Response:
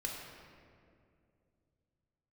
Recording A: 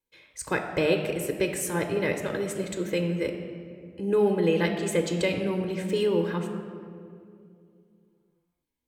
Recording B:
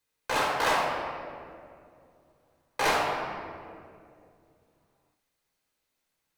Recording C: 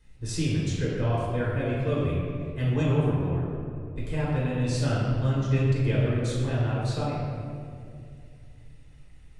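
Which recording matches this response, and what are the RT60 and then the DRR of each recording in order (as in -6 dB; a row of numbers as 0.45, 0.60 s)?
B; 2.5, 2.4, 2.4 s; 4.5, -2.0, -6.5 dB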